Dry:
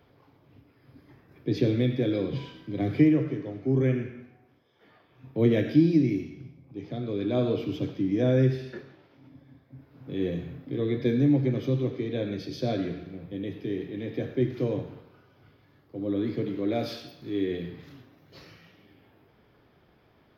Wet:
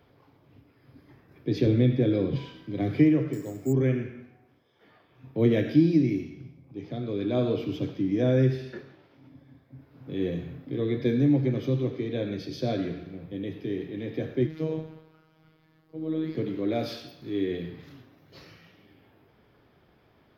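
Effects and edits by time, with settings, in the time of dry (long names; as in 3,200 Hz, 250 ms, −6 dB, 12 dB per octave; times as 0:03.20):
0:01.66–0:02.36: spectral tilt −1.5 dB per octave
0:03.33–0:03.73: bad sample-rate conversion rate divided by 6×, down none, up hold
0:14.47–0:16.35: phases set to zero 158 Hz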